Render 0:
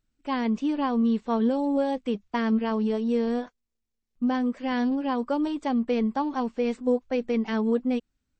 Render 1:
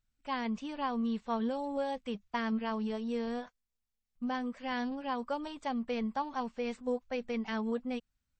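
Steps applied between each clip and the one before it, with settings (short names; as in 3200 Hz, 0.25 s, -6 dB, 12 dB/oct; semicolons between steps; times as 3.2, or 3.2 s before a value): bell 330 Hz -12.5 dB 0.97 oct; gain -4 dB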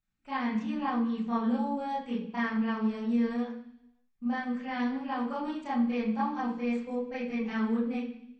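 reverb RT60 0.70 s, pre-delay 26 ms, DRR -8.5 dB; gain -8.5 dB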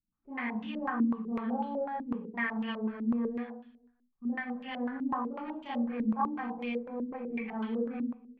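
stepped low-pass 8 Hz 280–3100 Hz; gain -6 dB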